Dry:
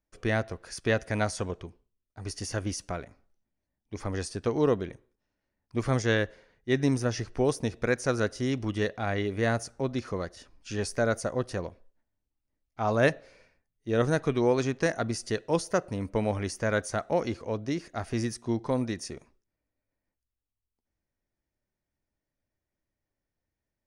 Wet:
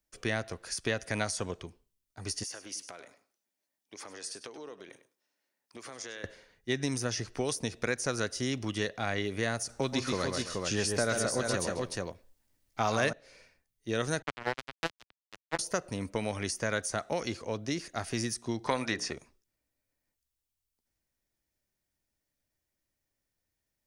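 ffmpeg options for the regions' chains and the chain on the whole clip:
-filter_complex "[0:a]asettb=1/sr,asplit=3[s0][s1][s2];[s0]atrim=end=2.434[s3];[s1]atrim=start=2.43:end=6.24,asetpts=PTS-STARTPTS,afade=t=in:d=0.004:c=qsin,afade=t=out:st=3.806:d=0.004:c=qsin,highpass=350,acompressor=threshold=0.00708:ratio=4:attack=3.2:release=140:knee=1:detection=peak,aecho=1:1:101:0.211,atrim=end_sample=168021[s4];[s2]atrim=start=6.236[s5];[s3][s4]acrossfade=d=0.004:c1=hsin:c2=qsin[s6];[s6][s5]acrossfade=d=0.004:c1=qsin:c2=hsin,asettb=1/sr,asplit=3[s7][s8][s9];[s7]atrim=end=9.694[s10];[s8]atrim=start=9.69:end=13.13,asetpts=PTS-STARTPTS,afade=t=in:d=0.004:c=qsin,afade=t=out:st=3.436:d=0.004:c=qsin,acontrast=62,aecho=1:1:130|161|270|429:0.531|0.141|0.106|0.422,atrim=end_sample=151704[s11];[s9]atrim=start=13.126[s12];[s10][s11]acrossfade=d=0.004:c1=hsin:c2=qsin[s13];[s13][s12]acrossfade=d=0.004:c1=qsin:c2=hsin,asettb=1/sr,asplit=3[s14][s15][s16];[s14]atrim=end=14.224[s17];[s15]atrim=start=14.22:end=15.59,asetpts=PTS-STARTPTS,afade=t=in:d=0.004:c=qsin,afade=t=out:st=1.366:d=0.004:c=qsin,adynamicsmooth=sensitivity=0.5:basefreq=1500,bandreject=f=50:t=h:w=6,bandreject=f=100:t=h:w=6,bandreject=f=150:t=h:w=6,bandreject=f=200:t=h:w=6,bandreject=f=250:t=h:w=6,bandreject=f=300:t=h:w=6,bandreject=f=350:t=h:w=6,acrusher=bits=2:mix=0:aa=0.5[s18];[s16]atrim=start=15.586[s19];[s17][s18]acrossfade=d=0.004:c1=hsin:c2=qsin[s20];[s20][s19]acrossfade=d=0.004:c1=qsin:c2=hsin,asettb=1/sr,asplit=3[s21][s22][s23];[s21]atrim=end=18.674[s24];[s22]atrim=start=18.67:end=19.13,asetpts=PTS-STARTPTS,afade=t=in:d=0.004:c=qsin,afade=t=out:st=0.456:d=0.004:c=qsin,acrossover=split=7000[s25][s26];[s26]acompressor=threshold=0.00141:ratio=4:attack=1:release=60[s27];[s25][s27]amix=inputs=2:normalize=0,equalizer=f=1400:w=0.35:g=13,bandreject=f=60:t=h:w=6,bandreject=f=120:t=h:w=6,bandreject=f=180:t=h:w=6,bandreject=f=240:t=h:w=6,bandreject=f=300:t=h:w=6,bandreject=f=360:t=h:w=6,bandreject=f=420:t=h:w=6,bandreject=f=480:t=h:w=6,bandreject=f=540:t=h:w=6[s28];[s23]atrim=start=19.126[s29];[s24][s28]acrossfade=d=0.004:c1=hsin:c2=qsin[s30];[s30][s29]acrossfade=d=0.004:c1=qsin:c2=hsin,highshelf=f=2500:g=11,acrossover=split=88|1400[s31][s32][s33];[s31]acompressor=threshold=0.00224:ratio=4[s34];[s32]acompressor=threshold=0.0447:ratio=4[s35];[s33]acompressor=threshold=0.0282:ratio=4[s36];[s34][s35][s36]amix=inputs=3:normalize=0,volume=0.794"

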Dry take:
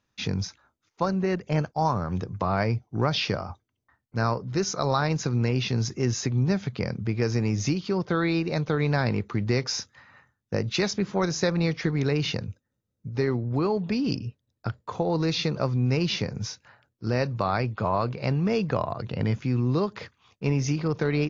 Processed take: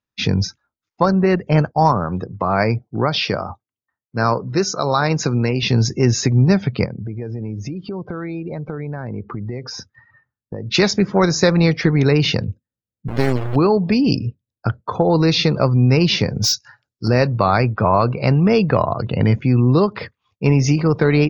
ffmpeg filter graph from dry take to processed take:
-filter_complex "[0:a]asettb=1/sr,asplit=3[s0][s1][s2];[s0]atrim=end=1.924[s3];[s1]atrim=start=1.92:end=5.63,asetpts=PTS-STARTPTS,afade=t=in:d=0.004:c=qsin,afade=t=out:st=3.706:d=0.004:c=qsin,highpass=f=160:p=1,tremolo=f=1.2:d=0.34[s4];[s2]atrim=start=5.626[s5];[s3][s4]acrossfade=d=0.004:c1=hsin:c2=qsin[s6];[s6][s5]acrossfade=d=0.004:c1=qsin:c2=hsin,asettb=1/sr,asplit=3[s7][s8][s9];[s7]atrim=end=6.854[s10];[s8]atrim=start=6.85:end=10.71,asetpts=PTS-STARTPTS,afade=t=in:d=0.004:c=qsin,afade=t=out:st=3.856:d=0.004:c=qsin,highshelf=f=2600:g=-10,acompressor=threshold=0.0158:ratio=4:attack=3.2:release=140:knee=1:detection=peak[s11];[s9]atrim=start=10.706[s12];[s10][s11]acrossfade=d=0.004:c1=hsin:c2=qsin[s13];[s13][s12]acrossfade=d=0.004:c1=qsin:c2=hsin,asettb=1/sr,asplit=3[s14][s15][s16];[s14]atrim=end=13.084[s17];[s15]atrim=start=13.08:end=13.56,asetpts=PTS-STARTPTS,afade=t=in:d=0.004:c=qsin,afade=t=out:st=0.476:d=0.004:c=qsin,bandreject=f=930:w=6.4,acrusher=bits=3:dc=4:mix=0:aa=0.000001[s18];[s16]atrim=start=13.556[s19];[s17][s18]acrossfade=d=0.004:c1=hsin:c2=qsin[s20];[s20][s19]acrossfade=d=0.004:c1=qsin:c2=hsin,asettb=1/sr,asplit=3[s21][s22][s23];[s21]atrim=end=16.424[s24];[s22]atrim=start=16.42:end=17.08,asetpts=PTS-STARTPTS,afade=t=in:d=0.004:c=qsin,afade=t=out:st=0.656:d=0.004:c=qsin,equalizer=f=5400:w=0.81:g=13.5,volume=15,asoftclip=hard,volume=0.0668[s25];[s23]atrim=start=17.076[s26];[s24][s25]acrossfade=d=0.004:c1=hsin:c2=qsin[s27];[s27][s26]acrossfade=d=0.004:c1=qsin:c2=hsin,acontrast=62,afftdn=nr=22:nf=-40,bandreject=f=6100:w=20,volume=1.58"

